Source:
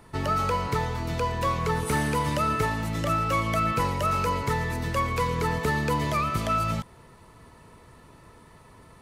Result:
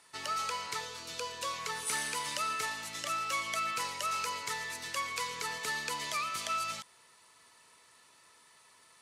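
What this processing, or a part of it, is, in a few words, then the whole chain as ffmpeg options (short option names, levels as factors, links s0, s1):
piezo pickup straight into a mixer: -filter_complex "[0:a]lowpass=7200,aderivative,asettb=1/sr,asplit=3[s0][s1][s2];[s0]atrim=end=0.804[s3];[s1]atrim=start=0.8:end=1.54,asetpts=PTS-STARTPTS,afade=t=in:d=0.004:c=qsin,afade=t=out:st=0.736:d=0.004:c=qsin,equalizer=f=500:t=o:w=0.33:g=6,equalizer=f=800:t=o:w=0.33:g=-10,equalizer=f=2000:t=o:w=0.33:g=-7[s4];[s2]atrim=start=1.536[s5];[s3][s4]acrossfade=d=0.004:c1=hsin:c2=qsin[s6];[s6][s5]acrossfade=d=0.004:c1=qsin:c2=hsin,volume=2.11"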